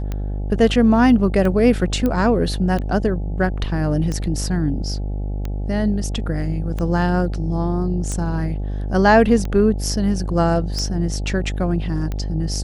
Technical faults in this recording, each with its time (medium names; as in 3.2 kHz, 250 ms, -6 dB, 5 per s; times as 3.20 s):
buzz 50 Hz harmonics 17 -24 dBFS
tick 45 rpm -14 dBFS
2.06 s: pop -10 dBFS